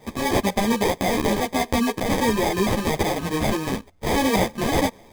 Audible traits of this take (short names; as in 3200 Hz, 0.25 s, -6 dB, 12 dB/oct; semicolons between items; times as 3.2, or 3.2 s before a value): aliases and images of a low sample rate 1400 Hz, jitter 0%; a shimmering, thickened sound